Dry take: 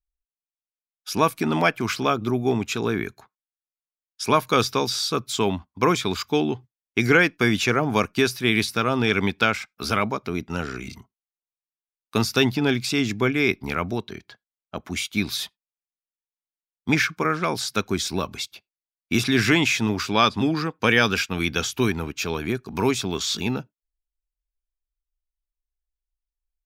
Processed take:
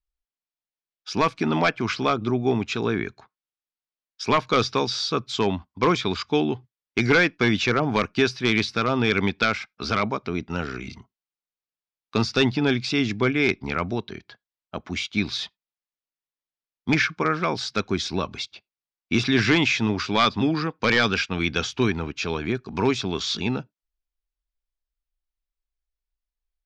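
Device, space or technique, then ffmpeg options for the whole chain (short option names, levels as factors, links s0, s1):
synthesiser wavefolder: -af "aeval=exprs='0.316*(abs(mod(val(0)/0.316+3,4)-2)-1)':c=same,lowpass=f=5500:w=0.5412,lowpass=f=5500:w=1.3066"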